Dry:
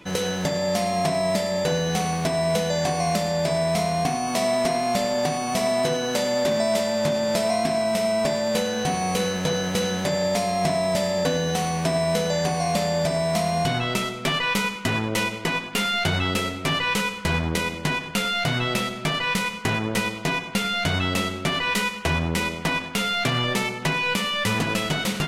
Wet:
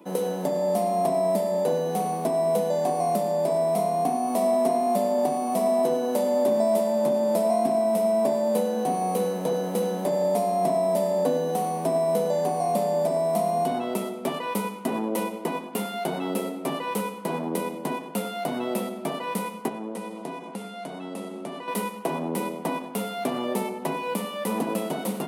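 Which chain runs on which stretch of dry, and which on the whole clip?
19.68–21.68 LPF 11000 Hz 24 dB/oct + compressor 2.5:1, threshold -30 dBFS
whole clip: steep high-pass 200 Hz 36 dB/oct; band shelf 3100 Hz -15.5 dB 2.8 oct; gain +1 dB

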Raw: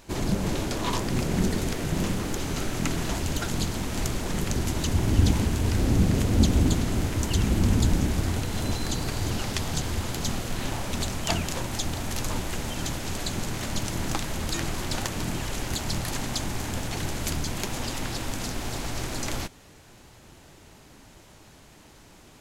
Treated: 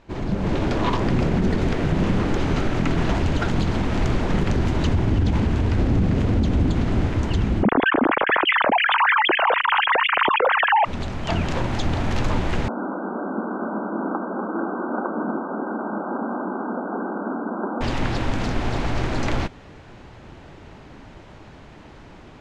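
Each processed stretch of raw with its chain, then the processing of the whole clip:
7.63–10.85 sine-wave speech + air absorption 440 m + fast leveller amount 100%
12.68–17.81 brick-wall FIR band-pass 190–1600 Hz + echo 0.244 s -9 dB
whole clip: Bessel low-pass 2200 Hz, order 2; AGC gain up to 9 dB; limiter -11.5 dBFS

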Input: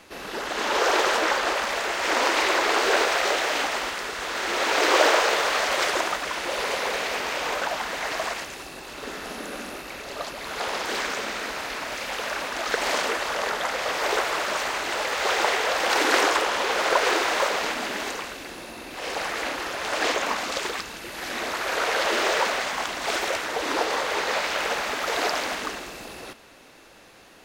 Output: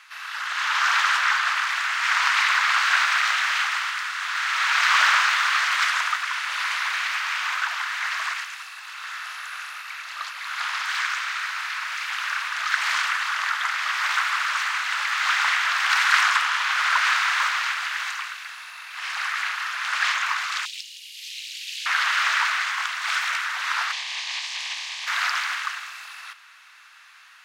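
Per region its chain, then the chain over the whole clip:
20.65–21.86 steep high-pass 2600 Hz + frequency shift +220 Hz
23.91–25.06 spectral limiter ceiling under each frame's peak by 17 dB + air absorption 71 m + fixed phaser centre 370 Hz, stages 6
whole clip: steep high-pass 1200 Hz 36 dB/oct; tilt -3.5 dB/oct; gain +8 dB

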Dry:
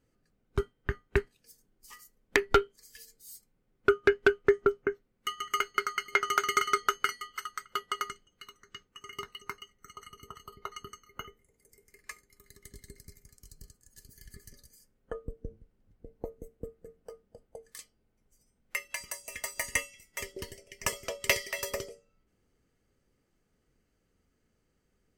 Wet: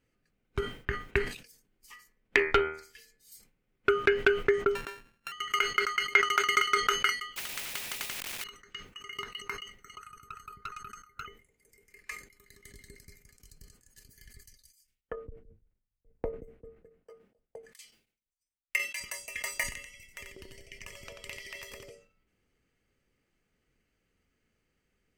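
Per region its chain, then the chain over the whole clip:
1.92–3.32 high shelf 5800 Hz -8.5 dB + de-hum 78.42 Hz, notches 32
4.75–5.32 sample sorter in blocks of 32 samples + bell 1700 Hz +9.5 dB 0.26 oct + compressor 12:1, threshold -36 dBFS
7.36–8.44 zero-crossing step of -41.5 dBFS + spectral compressor 10:1
9.98–11.26 EQ curve 150 Hz 0 dB, 330 Hz -8 dB, 490 Hz -9 dB, 870 Hz -13 dB, 1400 Hz +12 dB, 2400 Hz -17 dB, 9100 Hz +4 dB, 15000 Hz -2 dB + tube stage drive 31 dB, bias 0.5
14.33–19 tremolo triangle 6.9 Hz, depth 95% + three-band expander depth 100%
19.63–21.9 low shelf 150 Hz +11.5 dB + compressor 20:1, threshold -41 dBFS + echo 89 ms -5.5 dB
whole clip: bell 2400 Hz +9 dB 1.1 oct; sustainer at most 120 dB/s; gain -3.5 dB

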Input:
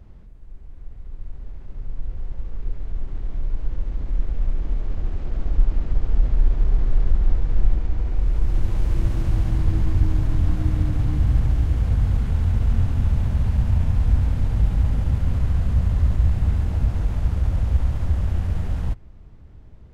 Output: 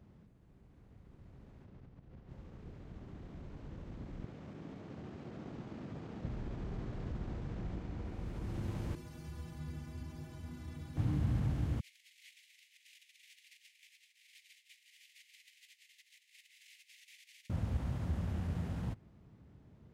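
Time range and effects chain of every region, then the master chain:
1.64–2.29 air absorption 61 m + compressor 10:1, threshold -27 dBFS
4.24–6.25 HPF 130 Hz + Doppler distortion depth 0.24 ms
8.95–10.97 high shelf 2100 Hz +7.5 dB + metallic resonator 73 Hz, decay 0.47 s, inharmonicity 0.03
11.8–17.5 negative-ratio compressor -22 dBFS + steep high-pass 2000 Hz 72 dB/oct
whole clip: HPF 180 Hz 12 dB/oct; tone controls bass +9 dB, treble 0 dB; gain -9 dB

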